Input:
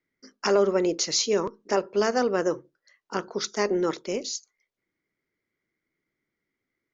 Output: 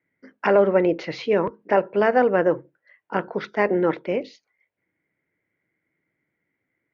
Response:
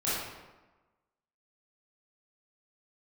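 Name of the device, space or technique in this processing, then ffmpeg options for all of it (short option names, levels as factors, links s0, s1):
bass cabinet: -af "highpass=65,equalizer=f=66:t=q:w=4:g=-8,equalizer=f=230:t=q:w=4:g=-6,equalizer=f=390:t=q:w=4:g=-7,equalizer=f=1200:t=q:w=4:g=-9,lowpass=f=2400:w=0.5412,lowpass=f=2400:w=1.3066,volume=2.66"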